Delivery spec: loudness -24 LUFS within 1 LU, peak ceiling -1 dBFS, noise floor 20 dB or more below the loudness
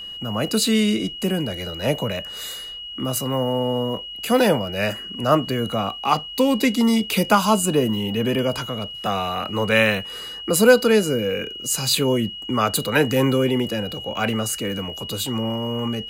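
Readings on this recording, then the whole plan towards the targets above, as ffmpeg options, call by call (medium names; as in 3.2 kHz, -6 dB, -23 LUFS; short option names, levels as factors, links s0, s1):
steady tone 2.9 kHz; tone level -32 dBFS; loudness -21.5 LUFS; peak level -2.5 dBFS; loudness target -24.0 LUFS
-> -af "bandreject=f=2900:w=30"
-af "volume=0.75"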